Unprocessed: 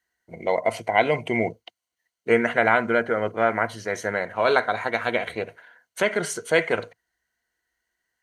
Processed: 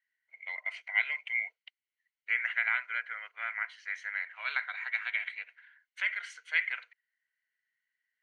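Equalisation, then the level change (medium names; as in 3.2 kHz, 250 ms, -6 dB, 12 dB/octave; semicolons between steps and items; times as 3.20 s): ladder high-pass 1.8 kHz, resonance 50%; tape spacing loss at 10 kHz 28 dB; +6.0 dB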